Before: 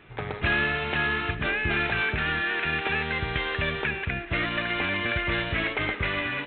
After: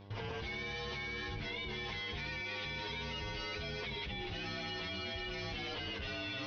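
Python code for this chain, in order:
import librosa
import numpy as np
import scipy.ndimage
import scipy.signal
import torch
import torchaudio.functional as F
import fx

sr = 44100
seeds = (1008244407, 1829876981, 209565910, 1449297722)

y = fx.partial_stretch(x, sr, pct=115)
y = fx.level_steps(y, sr, step_db=23)
y = fx.dmg_buzz(y, sr, base_hz=100.0, harmonics=11, level_db=-59.0, tilt_db=-5, odd_only=False)
y = y * 10.0 ** (5.0 / 20.0)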